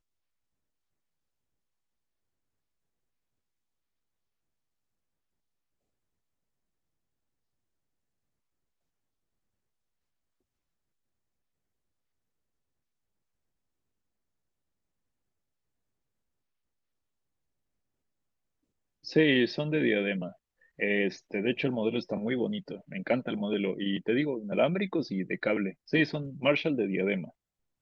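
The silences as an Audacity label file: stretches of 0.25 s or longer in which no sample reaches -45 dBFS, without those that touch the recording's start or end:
20.320000	20.790000	silence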